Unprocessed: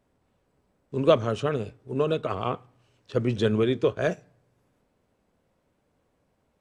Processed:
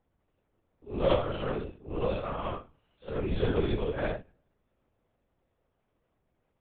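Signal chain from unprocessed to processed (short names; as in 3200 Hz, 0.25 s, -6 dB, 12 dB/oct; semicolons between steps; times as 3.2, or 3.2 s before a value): phase scrambler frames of 0.2 s; added harmonics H 6 -23 dB, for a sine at -8 dBFS; LPC vocoder at 8 kHz whisper; gain -5 dB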